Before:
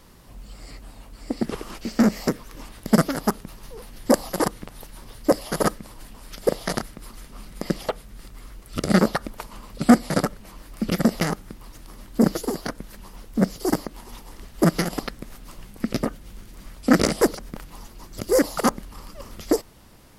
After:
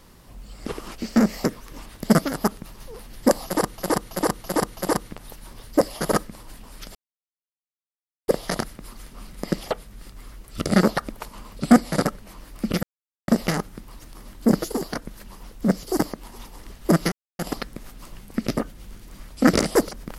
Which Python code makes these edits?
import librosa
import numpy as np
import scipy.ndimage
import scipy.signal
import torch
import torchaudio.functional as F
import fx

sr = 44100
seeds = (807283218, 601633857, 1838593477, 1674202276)

y = fx.edit(x, sr, fx.cut(start_s=0.65, length_s=0.83),
    fx.repeat(start_s=4.28, length_s=0.33, count=5),
    fx.insert_silence(at_s=6.46, length_s=1.33),
    fx.insert_silence(at_s=11.01, length_s=0.45),
    fx.insert_silence(at_s=14.85, length_s=0.27), tone=tone)